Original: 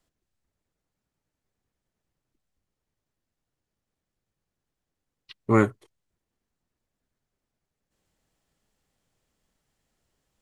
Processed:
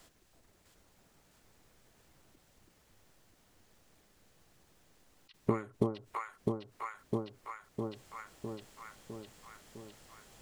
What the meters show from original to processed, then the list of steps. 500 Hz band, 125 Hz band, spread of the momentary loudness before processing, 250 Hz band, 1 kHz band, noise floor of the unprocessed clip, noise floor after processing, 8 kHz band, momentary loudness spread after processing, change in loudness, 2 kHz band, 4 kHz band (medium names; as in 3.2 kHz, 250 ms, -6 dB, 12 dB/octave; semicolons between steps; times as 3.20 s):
-6.5 dB, -7.5 dB, 12 LU, -7.5 dB, -6.0 dB, under -85 dBFS, -68 dBFS, no reading, 18 LU, -16.5 dB, -11.0 dB, -0.5 dB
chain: bass shelf 340 Hz -6 dB; compression 4:1, threshold -39 dBFS, peak gain reduction 19 dB; on a send: echo whose repeats swap between lows and highs 328 ms, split 890 Hz, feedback 77%, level -2.5 dB; on the sum: endings held to a fixed fall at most 150 dB/s; trim +18 dB